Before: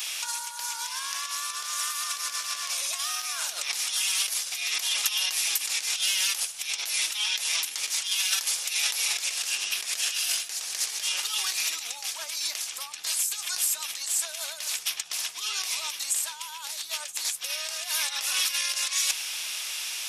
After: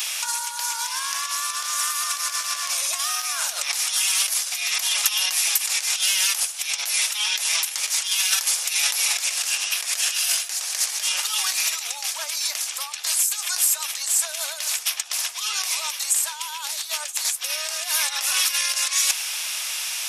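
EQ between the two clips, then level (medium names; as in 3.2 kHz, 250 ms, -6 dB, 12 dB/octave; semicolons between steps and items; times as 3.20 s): high-pass 510 Hz 24 dB/octave; dynamic bell 3.5 kHz, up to -4 dB, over -37 dBFS, Q 0.98; +7.0 dB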